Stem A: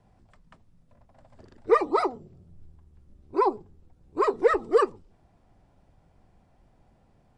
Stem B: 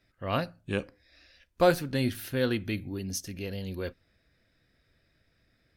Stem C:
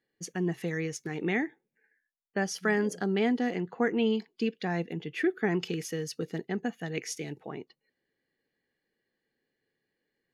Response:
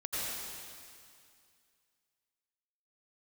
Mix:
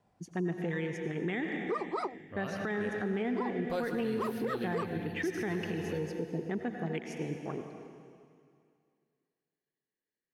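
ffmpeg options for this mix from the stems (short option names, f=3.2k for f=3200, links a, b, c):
-filter_complex "[0:a]highpass=f=220:p=1,volume=-5.5dB[a];[1:a]adelay=2100,volume=-10dB,asplit=2[b][c];[c]volume=-9dB[d];[2:a]afwtdn=0.01,volume=-0.5dB,asplit=2[e][f];[f]volume=-9dB[g];[3:a]atrim=start_sample=2205[h];[d][g]amix=inputs=2:normalize=0[i];[i][h]afir=irnorm=-1:irlink=0[j];[a][b][e][j]amix=inputs=4:normalize=0,alimiter=level_in=1dB:limit=-24dB:level=0:latency=1:release=143,volume=-1dB"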